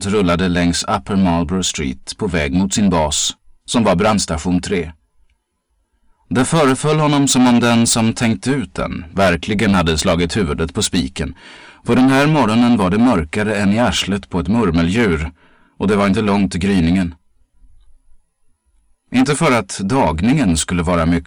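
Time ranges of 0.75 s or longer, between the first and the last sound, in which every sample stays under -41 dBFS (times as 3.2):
4.93–6.3
18.16–19.12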